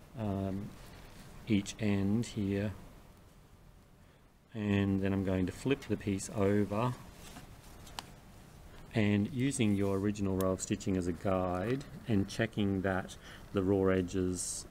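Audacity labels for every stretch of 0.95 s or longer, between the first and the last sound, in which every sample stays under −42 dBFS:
2.840000	4.550000	silence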